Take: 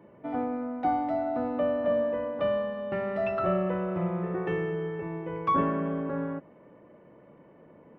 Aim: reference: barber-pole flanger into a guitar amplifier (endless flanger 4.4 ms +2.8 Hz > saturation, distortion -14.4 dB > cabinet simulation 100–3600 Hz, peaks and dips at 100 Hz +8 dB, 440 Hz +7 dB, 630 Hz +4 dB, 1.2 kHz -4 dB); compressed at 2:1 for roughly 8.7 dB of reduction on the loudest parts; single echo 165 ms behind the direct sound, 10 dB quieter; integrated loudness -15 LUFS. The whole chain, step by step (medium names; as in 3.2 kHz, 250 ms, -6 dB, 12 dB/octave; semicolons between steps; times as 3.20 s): compression 2:1, threshold -38 dBFS; delay 165 ms -10 dB; endless flanger 4.4 ms +2.8 Hz; saturation -34.5 dBFS; cabinet simulation 100–3600 Hz, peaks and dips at 100 Hz +8 dB, 440 Hz +7 dB, 630 Hz +4 dB, 1.2 kHz -4 dB; trim +23.5 dB